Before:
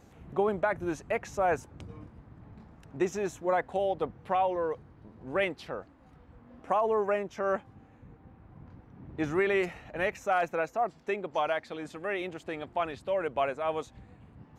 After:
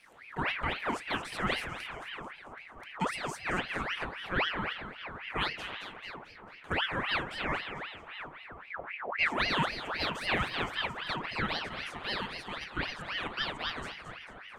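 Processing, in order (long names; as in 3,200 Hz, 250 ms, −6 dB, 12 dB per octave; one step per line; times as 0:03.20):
0:08.70–0:09.26: RIAA equalisation playback
echo with a time of its own for lows and highs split 620 Hz, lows 686 ms, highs 221 ms, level −8.5 dB
convolution reverb RT60 0.40 s, pre-delay 3 ms, DRR 6 dB
ring modulator whose carrier an LFO sweeps 1,500 Hz, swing 65%, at 3.8 Hz
level +1.5 dB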